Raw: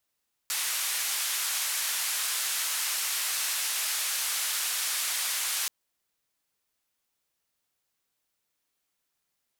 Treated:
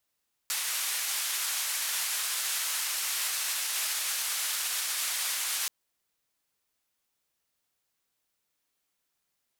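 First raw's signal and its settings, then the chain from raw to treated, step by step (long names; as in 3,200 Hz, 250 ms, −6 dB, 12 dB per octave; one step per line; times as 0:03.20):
band-limited noise 1,200–13,000 Hz, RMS −30 dBFS 5.18 s
brickwall limiter −21 dBFS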